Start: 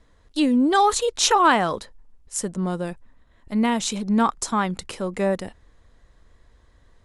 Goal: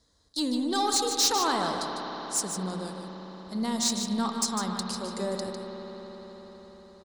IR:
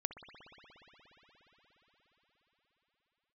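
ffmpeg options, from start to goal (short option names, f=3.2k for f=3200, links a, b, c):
-filter_complex "[0:a]highpass=53,highshelf=f=3.4k:t=q:w=3:g=9.5,asoftclip=type=tanh:threshold=-10.5dB,aecho=1:1:151:0.398[a];[1:a]atrim=start_sample=2205[b];[a][b]afir=irnorm=-1:irlink=0,volume=-7.5dB"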